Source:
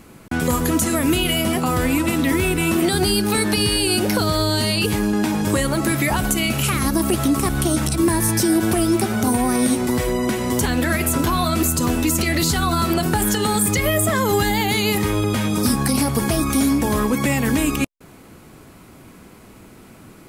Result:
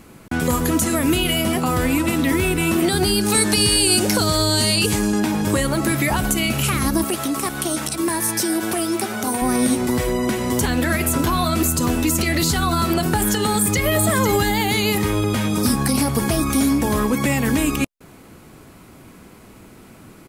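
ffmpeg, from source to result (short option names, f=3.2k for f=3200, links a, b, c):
-filter_complex "[0:a]asettb=1/sr,asplit=3[a][b][c];[a]atrim=end=3.214[d];[b]atrim=start=3.21:end=5.2,asetpts=PTS-STARTPTS,afade=t=in:d=0.004:c=qsin,afade=t=out:st=1.986:d=0.004:c=qsin,equalizer=f=7.4k:w=1:g=9[e];[c]atrim=start=5.196[f];[d][e]acrossfade=d=0.004:c1=hsin:c2=qsin[g];[g][f]acrossfade=d=0.004:c1=qsin:c2=hsin,asettb=1/sr,asplit=3[h][i][j];[h]atrim=end=7.044[k];[i]atrim=start=7.04:end=9.42,asetpts=PTS-STARTPTS,afade=t=in:d=0.004:c=qsin,afade=t=out:st=2.376:d=0.004:c=qsin,highpass=f=450:p=1[l];[j]atrim=start=9.416[m];[k][l]acrossfade=d=0.004:c1=hsin:c2=qsin[n];[n][m]acrossfade=d=0.004:c1=qsin:c2=hsin,asplit=2[o][p];[p]afade=t=in:st=13.41:d=0.01,afade=t=out:st=13.86:d=0.01,aecho=0:1:500|1000|1500:0.421697|0.105424|0.026356[q];[o][q]amix=inputs=2:normalize=0"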